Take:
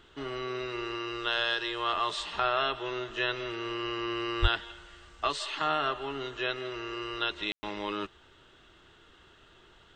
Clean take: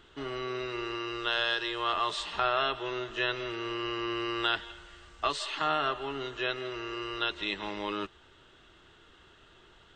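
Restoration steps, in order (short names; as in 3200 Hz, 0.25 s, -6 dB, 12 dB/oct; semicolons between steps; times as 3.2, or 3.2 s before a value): 4.41–4.53 HPF 140 Hz 24 dB/oct; room tone fill 7.52–7.63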